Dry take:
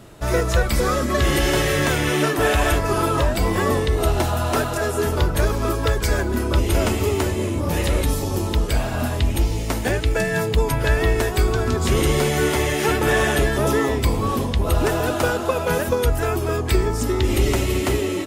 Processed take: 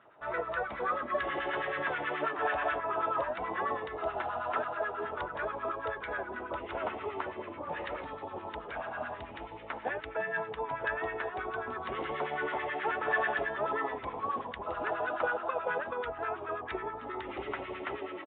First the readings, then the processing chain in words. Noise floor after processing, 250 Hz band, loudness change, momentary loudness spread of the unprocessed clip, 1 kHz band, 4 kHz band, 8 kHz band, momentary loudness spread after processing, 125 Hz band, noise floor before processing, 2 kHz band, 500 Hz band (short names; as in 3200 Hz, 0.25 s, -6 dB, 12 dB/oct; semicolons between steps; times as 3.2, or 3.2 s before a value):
-45 dBFS, -21.0 dB, -14.0 dB, 4 LU, -7.5 dB, -21.0 dB, under -40 dB, 8 LU, -31.5 dB, -25 dBFS, -9.5 dB, -14.0 dB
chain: LFO band-pass sine 9.3 Hz 710–1600 Hz; downsampling 8000 Hz; gain -4 dB